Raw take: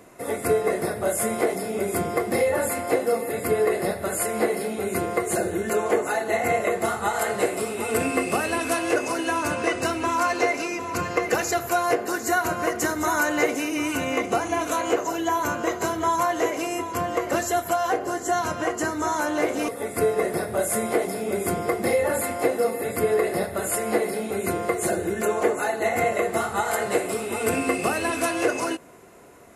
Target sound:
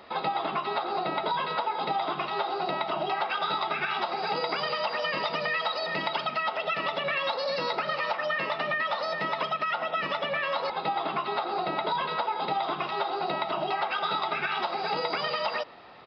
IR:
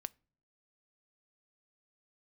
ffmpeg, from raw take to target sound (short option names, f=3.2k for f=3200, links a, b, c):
-af "acompressor=threshold=-26dB:ratio=4,asetrate=81144,aresample=44100,aresample=11025,aresample=44100"